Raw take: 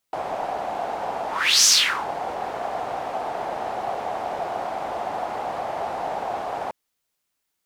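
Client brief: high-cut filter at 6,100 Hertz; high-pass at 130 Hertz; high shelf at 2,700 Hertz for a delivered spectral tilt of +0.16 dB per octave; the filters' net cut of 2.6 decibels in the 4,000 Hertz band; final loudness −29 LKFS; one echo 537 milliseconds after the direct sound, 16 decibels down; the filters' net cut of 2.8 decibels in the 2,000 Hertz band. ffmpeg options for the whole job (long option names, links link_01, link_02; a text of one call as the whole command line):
ffmpeg -i in.wav -af "highpass=130,lowpass=6100,equalizer=frequency=2000:width_type=o:gain=-4.5,highshelf=frequency=2700:gain=7,equalizer=frequency=4000:width_type=o:gain=-7.5,aecho=1:1:537:0.158,volume=-4dB" out.wav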